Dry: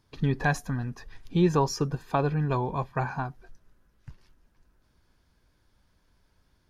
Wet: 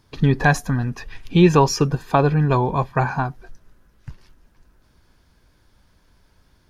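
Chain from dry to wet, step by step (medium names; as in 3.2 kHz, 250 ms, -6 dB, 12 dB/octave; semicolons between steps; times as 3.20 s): 0.94–1.91 s: peaking EQ 2.6 kHz +7.5 dB 0.64 oct; trim +9 dB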